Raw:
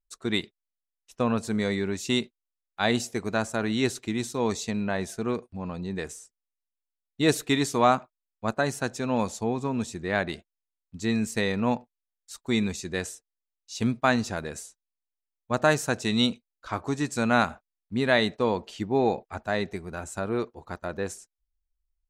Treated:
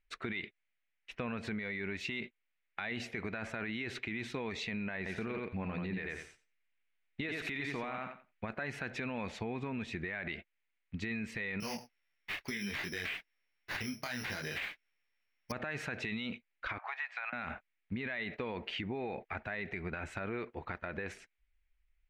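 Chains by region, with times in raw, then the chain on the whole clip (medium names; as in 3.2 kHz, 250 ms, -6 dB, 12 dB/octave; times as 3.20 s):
4.97–8.49 s: compression, threshold -25 dBFS + feedback delay 88 ms, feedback 16%, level -5 dB
11.60–15.52 s: careless resampling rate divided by 8×, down none, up zero stuff + compression 3:1, threshold -20 dBFS + detune thickener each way 24 cents
16.78–17.33 s: elliptic high-pass 730 Hz, stop band 60 dB + compressor with a negative ratio -35 dBFS, ratio -0.5 + tape spacing loss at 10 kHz 30 dB
whole clip: FFT filter 1.1 kHz 0 dB, 2.2 kHz +15 dB, 7.3 kHz -21 dB; peak limiter -26.5 dBFS; compression 3:1, threshold -42 dBFS; trim +4.5 dB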